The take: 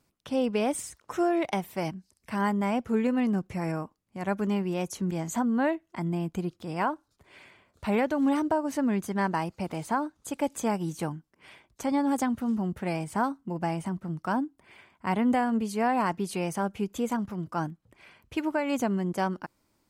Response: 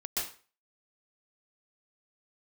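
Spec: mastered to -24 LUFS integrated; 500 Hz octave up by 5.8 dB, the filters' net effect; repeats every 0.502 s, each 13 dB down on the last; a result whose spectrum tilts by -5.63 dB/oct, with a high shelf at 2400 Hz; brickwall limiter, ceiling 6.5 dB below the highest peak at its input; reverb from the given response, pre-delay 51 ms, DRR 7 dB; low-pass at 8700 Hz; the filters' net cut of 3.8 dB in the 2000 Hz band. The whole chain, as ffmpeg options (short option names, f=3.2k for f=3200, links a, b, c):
-filter_complex "[0:a]lowpass=8.7k,equalizer=f=500:t=o:g=7.5,equalizer=f=2k:t=o:g=-8,highshelf=f=2.4k:g=5,alimiter=limit=-18.5dB:level=0:latency=1,aecho=1:1:502|1004|1506:0.224|0.0493|0.0108,asplit=2[a][b];[1:a]atrim=start_sample=2205,adelay=51[c];[b][c]afir=irnorm=-1:irlink=0,volume=-11.5dB[d];[a][d]amix=inputs=2:normalize=0,volume=4dB"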